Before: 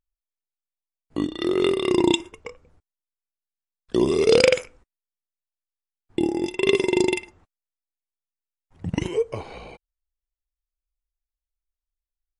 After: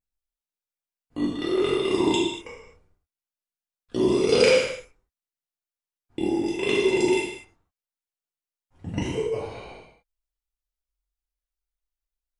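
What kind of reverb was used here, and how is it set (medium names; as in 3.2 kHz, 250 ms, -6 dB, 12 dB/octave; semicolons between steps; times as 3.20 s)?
gated-style reverb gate 280 ms falling, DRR -6.5 dB; trim -8 dB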